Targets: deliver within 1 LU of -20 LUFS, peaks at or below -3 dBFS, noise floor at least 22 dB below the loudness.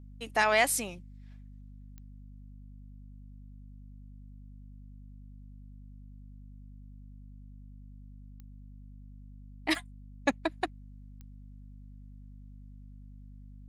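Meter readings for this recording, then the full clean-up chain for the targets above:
clicks 4; hum 50 Hz; harmonics up to 250 Hz; hum level -46 dBFS; loudness -30.0 LUFS; peak -11.5 dBFS; loudness target -20.0 LUFS
-> de-click; notches 50/100/150/200/250 Hz; gain +10 dB; limiter -3 dBFS

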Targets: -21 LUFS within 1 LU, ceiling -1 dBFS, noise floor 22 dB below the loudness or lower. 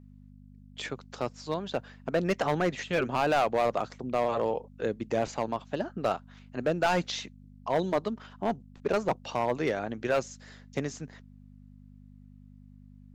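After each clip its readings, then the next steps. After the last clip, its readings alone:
clipped 1.3%; flat tops at -19.5 dBFS; hum 50 Hz; harmonics up to 250 Hz; hum level -51 dBFS; loudness -30.5 LUFS; peak -19.5 dBFS; loudness target -21.0 LUFS
-> clip repair -19.5 dBFS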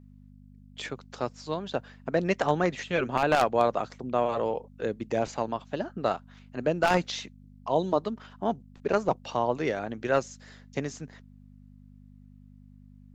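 clipped 0.0%; hum 50 Hz; harmonics up to 250 Hz; hum level -50 dBFS
-> de-hum 50 Hz, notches 5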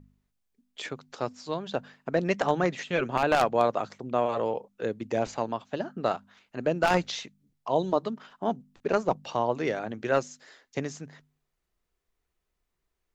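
hum none; loudness -29.5 LUFS; peak -10.0 dBFS; loudness target -21.0 LUFS
-> gain +8.5 dB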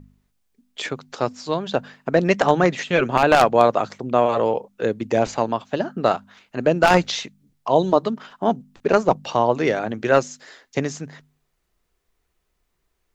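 loudness -21.0 LUFS; peak -1.5 dBFS; noise floor -73 dBFS

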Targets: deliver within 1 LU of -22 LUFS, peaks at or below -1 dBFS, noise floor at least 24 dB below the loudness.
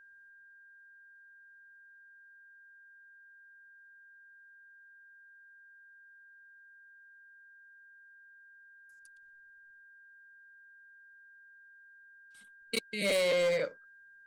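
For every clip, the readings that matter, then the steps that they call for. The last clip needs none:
clipped 0.5%; flat tops at -25.0 dBFS; steady tone 1600 Hz; tone level -55 dBFS; loudness -30.5 LUFS; peak -25.0 dBFS; loudness target -22.0 LUFS
-> clip repair -25 dBFS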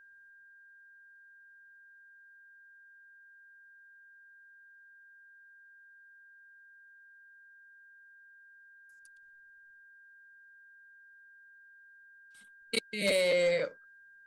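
clipped 0.0%; steady tone 1600 Hz; tone level -55 dBFS
-> notch 1600 Hz, Q 30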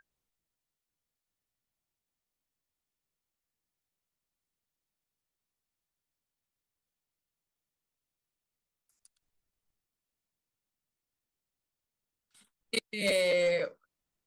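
steady tone none; loudness -30.0 LUFS; peak -16.0 dBFS; loudness target -22.0 LUFS
-> gain +8 dB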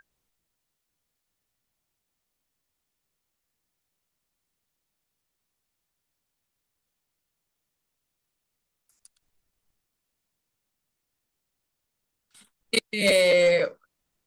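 loudness -22.0 LUFS; peak -8.0 dBFS; noise floor -82 dBFS

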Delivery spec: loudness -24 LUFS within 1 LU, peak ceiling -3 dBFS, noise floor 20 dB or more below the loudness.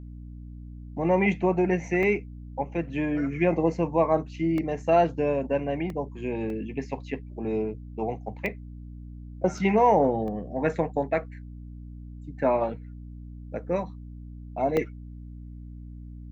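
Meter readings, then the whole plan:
dropouts 8; longest dropout 1.7 ms; hum 60 Hz; harmonics up to 300 Hz; hum level -39 dBFS; loudness -26.5 LUFS; peak -9.5 dBFS; loudness target -24.0 LUFS
-> interpolate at 2.03/4.58/5.9/6.5/8.46/9.58/10.28/14.77, 1.7 ms; de-hum 60 Hz, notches 5; gain +2.5 dB

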